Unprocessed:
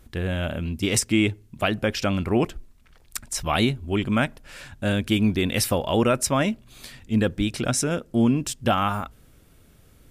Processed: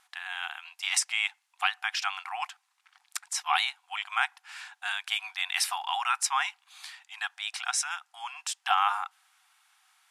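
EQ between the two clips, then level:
linear-phase brick-wall high-pass 720 Hz
low-pass filter 12,000 Hz 24 dB per octave
high-shelf EQ 9,300 Hz −8.5 dB
0.0 dB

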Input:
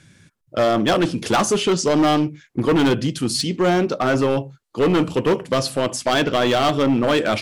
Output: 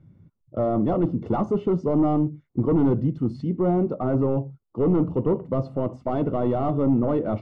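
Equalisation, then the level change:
Savitzky-Golay smoothing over 65 samples
high-frequency loss of the air 68 metres
low-shelf EQ 310 Hz +11 dB
−8.5 dB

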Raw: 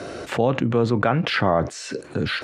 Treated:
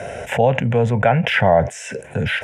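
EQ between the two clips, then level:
phaser with its sweep stopped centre 1,200 Hz, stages 6
+7.5 dB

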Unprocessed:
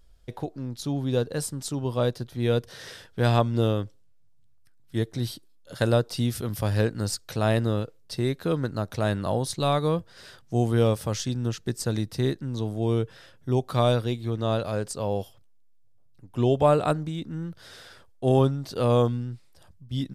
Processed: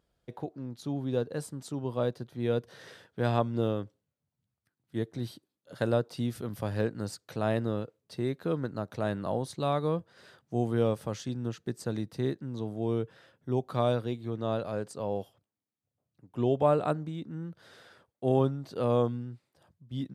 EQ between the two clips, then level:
high-pass filter 130 Hz 12 dB per octave
high-shelf EQ 2,700 Hz −9.5 dB
notch filter 5,300 Hz, Q 19
−4.0 dB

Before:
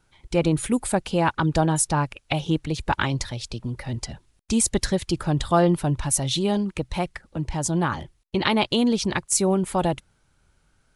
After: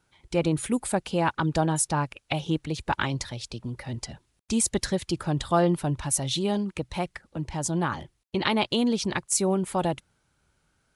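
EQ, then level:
high-pass filter 81 Hz 6 dB per octave
−3.0 dB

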